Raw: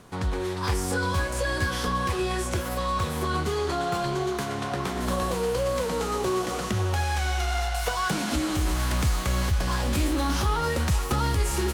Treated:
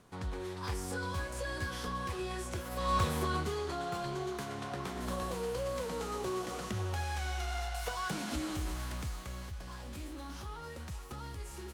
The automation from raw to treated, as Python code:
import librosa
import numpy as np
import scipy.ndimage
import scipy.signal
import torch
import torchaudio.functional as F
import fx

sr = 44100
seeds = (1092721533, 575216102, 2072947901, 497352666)

y = fx.gain(x, sr, db=fx.line((2.7, -11.0), (2.95, -2.0), (3.65, -10.0), (8.48, -10.0), (9.52, -19.0)))